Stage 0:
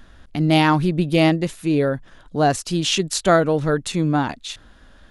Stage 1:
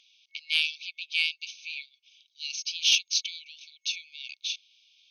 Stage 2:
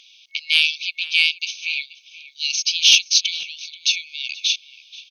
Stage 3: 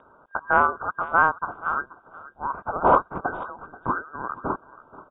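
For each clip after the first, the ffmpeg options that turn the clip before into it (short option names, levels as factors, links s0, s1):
-af "afftfilt=real='re*between(b*sr/4096,2200,6500)':imag='im*between(b*sr/4096,2200,6500)':win_size=4096:overlap=0.75,acontrast=59,volume=0.531"
-filter_complex "[0:a]asplit=2[s0][s1];[s1]alimiter=limit=0.126:level=0:latency=1,volume=1.33[s2];[s0][s2]amix=inputs=2:normalize=0,asplit=2[s3][s4];[s4]adelay=481,lowpass=f=1000:p=1,volume=0.376,asplit=2[s5][s6];[s6]adelay=481,lowpass=f=1000:p=1,volume=0.18,asplit=2[s7][s8];[s8]adelay=481,lowpass=f=1000:p=1,volume=0.18[s9];[s3][s5][s7][s9]amix=inputs=4:normalize=0,volume=1.78"
-filter_complex "[0:a]acrossover=split=580|1600[s0][s1][s2];[s0]aeval=exprs='(mod(447*val(0)+1,2)-1)/447':c=same[s3];[s3][s1][s2]amix=inputs=3:normalize=0,lowpass=f=3200:t=q:w=0.5098,lowpass=f=3200:t=q:w=0.6013,lowpass=f=3200:t=q:w=0.9,lowpass=f=3200:t=q:w=2.563,afreqshift=-3800"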